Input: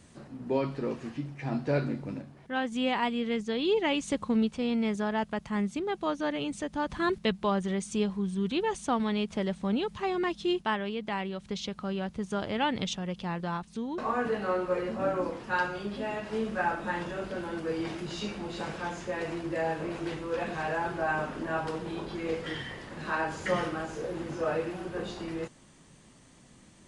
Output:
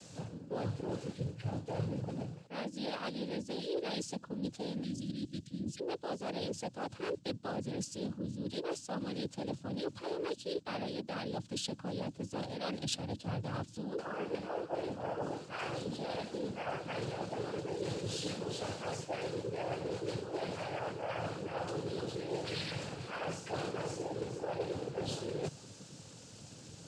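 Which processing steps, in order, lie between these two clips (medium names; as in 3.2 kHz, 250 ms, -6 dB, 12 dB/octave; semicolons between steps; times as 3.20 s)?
spectral selection erased 4.83–5.79 s, 250–2300 Hz; noise-vocoded speech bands 8; reverse; compression 6:1, threshold -41 dBFS, peak gain reduction 20 dB; reverse; ten-band graphic EQ 250 Hz -8 dB, 1 kHz -7 dB, 2 kHz -10 dB; trim +10 dB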